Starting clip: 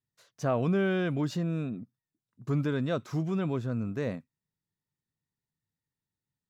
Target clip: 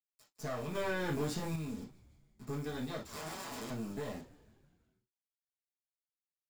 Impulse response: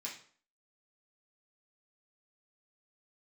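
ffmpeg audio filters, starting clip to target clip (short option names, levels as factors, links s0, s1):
-filter_complex "[0:a]aeval=exprs='if(lt(val(0),0),0.251*val(0),val(0))':c=same,acrusher=bits=6:dc=4:mix=0:aa=0.000001,asettb=1/sr,asplit=3[s0][s1][s2];[s0]atrim=end=3.044[s3];[s1]atrim=start=3.04:end=3.7,asetpts=PTS-STARTPTS,afade=t=in:d=0.004:c=qsin,afade=t=out:st=0.656:d=0.004:c=qsin,aeval=exprs='(mod(56.2*val(0)+1,2)-1)/56.2':c=same[s4];[s2]atrim=start=3.696[s5];[s3][s4]acrossfade=d=0.004:c1=hsin:c2=qsin[s6];[s6][s5]acrossfade=d=0.004:c1=qsin:c2=hsin[s7];[1:a]atrim=start_sample=2205,atrim=end_sample=3087[s8];[s7][s8]afir=irnorm=-1:irlink=0,acrossover=split=130|1700[s9][s10][s11];[s9]acompressor=threshold=0.002:ratio=4[s12];[s10]acompressor=threshold=0.00708:ratio=4[s13];[s11]acompressor=threshold=0.00398:ratio=4[s14];[s12][s13][s14]amix=inputs=3:normalize=0,equalizer=f=2300:w=1.3:g=-7,asplit=6[s15][s16][s17][s18][s19][s20];[s16]adelay=162,afreqshift=-75,volume=0.1[s21];[s17]adelay=324,afreqshift=-150,volume=0.0617[s22];[s18]adelay=486,afreqshift=-225,volume=0.0385[s23];[s19]adelay=648,afreqshift=-300,volume=0.0237[s24];[s20]adelay=810,afreqshift=-375,volume=0.0148[s25];[s15][s21][s22][s23][s24][s25]amix=inputs=6:normalize=0,asettb=1/sr,asplit=3[s26][s27][s28];[s26]atrim=end=0.754[s29];[s27]atrim=start=0.75:end=1.56,asetpts=PTS-STARTPTS,afade=t=in:d=0.004:c=qsin,afade=t=out:st=0.806:d=0.004:c=qsin,acontrast=27[s30];[s28]atrim=start=1.556[s31];[s29][s30]acrossfade=d=0.004:c1=hsin:c2=qsin[s32];[s32][s31]acrossfade=d=0.004:c1=qsin:c2=hsin,volume=1.68"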